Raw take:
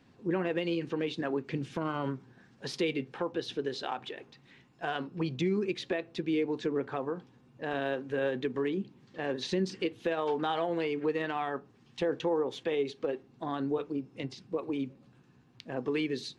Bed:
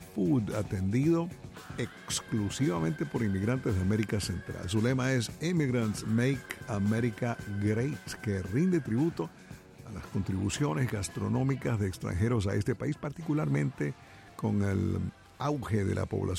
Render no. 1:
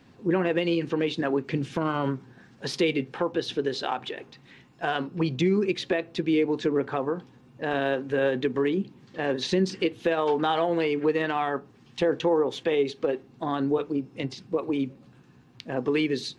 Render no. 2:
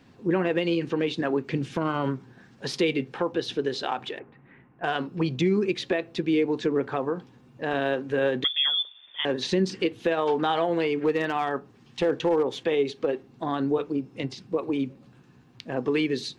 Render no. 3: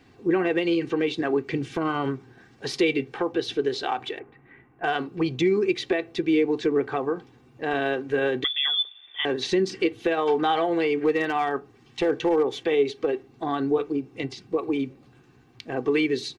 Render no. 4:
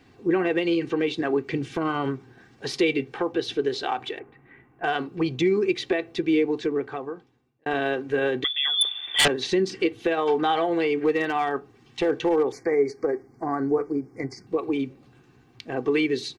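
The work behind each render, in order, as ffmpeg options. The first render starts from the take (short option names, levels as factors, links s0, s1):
-af "volume=2.11"
-filter_complex "[0:a]asettb=1/sr,asplit=3[s0][s1][s2];[s0]atrim=end=4.194[s3];[s1]atrim=start=4.19:end=4.84,asetpts=PTS-STARTPTS,afade=t=in:d=0.004:c=qsin,afade=t=out:st=0.646:d=0.004:c=qsin,lowpass=f=2000:w=0.5412,lowpass=f=2000:w=1.3066[s4];[s2]atrim=start=4.836[s5];[s3][s4]acrossfade=d=0.004:c1=hsin:c2=qsin[s6];[s6][s5]acrossfade=d=0.004:c1=qsin:c2=hsin,asettb=1/sr,asplit=3[s7][s8][s9];[s7]atrim=end=8.444[s10];[s8]atrim=start=8.44:end=9.25,asetpts=PTS-STARTPTS,afade=t=in:d=0.004:c=qsin,afade=t=out:st=0.806:d=0.004:c=qsin,lowpass=f=3100:t=q:w=0.5098,lowpass=f=3100:t=q:w=0.6013,lowpass=f=3100:t=q:w=0.9,lowpass=f=3100:t=q:w=2.563,afreqshift=-3700[s11];[s9]atrim=start=9.246[s12];[s10][s11]acrossfade=d=0.004:c1=hsin:c2=qsin[s13];[s13][s12]acrossfade=d=0.004:c1=qsin:c2=hsin,asettb=1/sr,asplit=3[s14][s15][s16];[s14]atrim=end=11.004[s17];[s15]atrim=start=11:end=12.55,asetpts=PTS-STARTPTS,afade=t=in:d=0.004:c=qsin,afade=t=out:st=1.546:d=0.004:c=qsin,volume=6.68,asoftclip=hard,volume=0.15[s18];[s16]atrim=start=12.546[s19];[s17][s18]acrossfade=d=0.004:c1=hsin:c2=qsin[s20];[s20][s19]acrossfade=d=0.004:c1=qsin:c2=hsin"
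-af "equalizer=f=2100:t=o:w=0.22:g=4.5,aecho=1:1:2.6:0.49"
-filter_complex "[0:a]asettb=1/sr,asplit=3[s0][s1][s2];[s0]atrim=end=8.814[s3];[s1]atrim=start=8.81:end=9.28,asetpts=PTS-STARTPTS,afade=t=in:d=0.004:c=qsin,afade=t=out:st=0.466:d=0.004:c=qsin,aeval=exprs='0.2*sin(PI/2*3.55*val(0)/0.2)':c=same[s4];[s2]atrim=start=9.276[s5];[s3][s4]acrossfade=d=0.004:c1=hsin:c2=qsin[s6];[s6][s5]acrossfade=d=0.004:c1=qsin:c2=hsin,asettb=1/sr,asplit=3[s7][s8][s9];[s7]atrim=end=12.524[s10];[s8]atrim=start=12.52:end=14.47,asetpts=PTS-STARTPTS,afade=t=in:d=0.004:c=qsin,afade=t=out:st=1.946:d=0.004:c=qsin,asuperstop=centerf=3200:order=12:qfactor=1.4[s11];[s9]atrim=start=14.466[s12];[s10][s11]acrossfade=d=0.004:c1=hsin:c2=qsin[s13];[s13][s12]acrossfade=d=0.004:c1=qsin:c2=hsin,asplit=2[s14][s15];[s14]atrim=end=7.66,asetpts=PTS-STARTPTS,afade=t=out:st=6.36:d=1.3[s16];[s15]atrim=start=7.66,asetpts=PTS-STARTPTS,afade=t=in:d=0.004:c=hsin[s17];[s16][s17]concat=n=2:v=0:a=1"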